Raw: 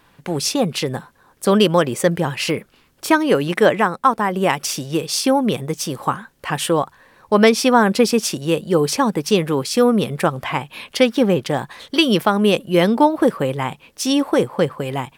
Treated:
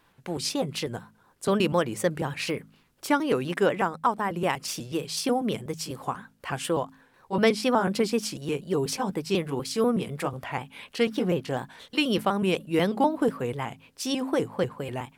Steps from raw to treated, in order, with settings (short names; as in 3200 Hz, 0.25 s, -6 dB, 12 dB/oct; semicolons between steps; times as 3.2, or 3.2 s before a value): trilling pitch shifter -1.5 st, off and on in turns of 0.123 s; de-hum 53.11 Hz, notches 5; gain -8.5 dB